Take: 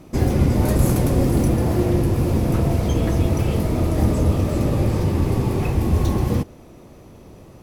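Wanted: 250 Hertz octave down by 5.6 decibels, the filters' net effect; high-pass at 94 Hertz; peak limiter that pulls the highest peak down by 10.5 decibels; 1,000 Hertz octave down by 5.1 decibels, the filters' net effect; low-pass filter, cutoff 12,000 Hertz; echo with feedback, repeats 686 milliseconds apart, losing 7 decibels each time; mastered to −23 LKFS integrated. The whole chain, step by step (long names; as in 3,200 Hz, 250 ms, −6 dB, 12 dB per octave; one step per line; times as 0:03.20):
high-pass filter 94 Hz
low-pass filter 12,000 Hz
parametric band 250 Hz −7.5 dB
parametric band 1,000 Hz −6.5 dB
brickwall limiter −20 dBFS
repeating echo 686 ms, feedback 45%, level −7 dB
level +5 dB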